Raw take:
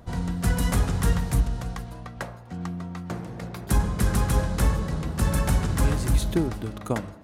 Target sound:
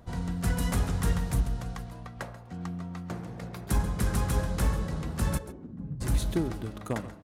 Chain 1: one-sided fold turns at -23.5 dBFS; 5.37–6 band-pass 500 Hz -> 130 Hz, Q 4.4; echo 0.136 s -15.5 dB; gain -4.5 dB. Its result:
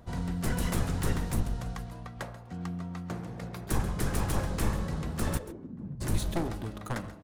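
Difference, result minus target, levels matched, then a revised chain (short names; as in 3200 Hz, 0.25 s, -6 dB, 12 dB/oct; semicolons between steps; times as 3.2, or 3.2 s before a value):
one-sided fold: distortion +24 dB
one-sided fold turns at -14 dBFS; 5.37–6 band-pass 500 Hz -> 130 Hz, Q 4.4; echo 0.136 s -15.5 dB; gain -4.5 dB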